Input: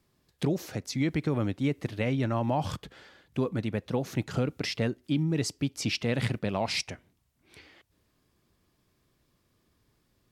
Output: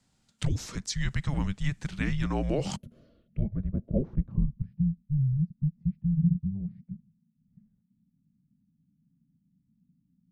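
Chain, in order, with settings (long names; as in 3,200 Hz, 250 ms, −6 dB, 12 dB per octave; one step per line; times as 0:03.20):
low-pass filter sweep 7,900 Hz → 130 Hz, 0:02.91–0:04.82
gain on a spectral selection 0:02.77–0:03.97, 980–10,000 Hz −23 dB
frequency shifter −290 Hz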